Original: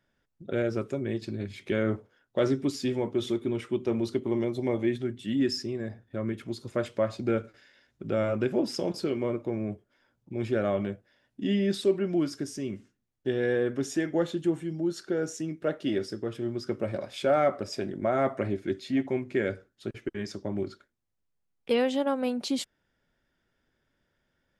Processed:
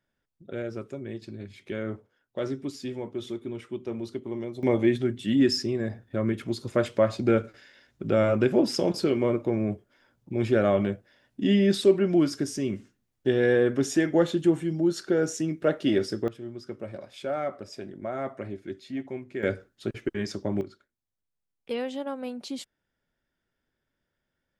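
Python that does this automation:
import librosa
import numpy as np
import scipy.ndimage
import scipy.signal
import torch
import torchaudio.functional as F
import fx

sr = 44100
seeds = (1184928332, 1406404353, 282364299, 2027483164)

y = fx.gain(x, sr, db=fx.steps((0.0, -5.5), (4.63, 5.0), (16.28, -6.5), (19.43, 4.0), (20.61, -6.0)))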